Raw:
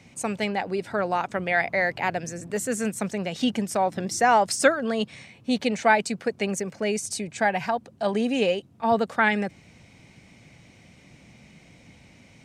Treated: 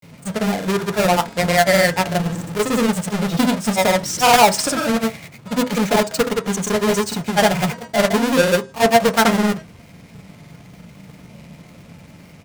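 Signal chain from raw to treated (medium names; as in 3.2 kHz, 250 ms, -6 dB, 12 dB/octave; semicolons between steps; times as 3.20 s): square wave that keeps the level; de-hum 318 Hz, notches 30; granulator, pitch spread up and down by 0 st; on a send: reverberation RT60 0.25 s, pre-delay 3 ms, DRR 7.5 dB; on the sum: trim +4.5 dB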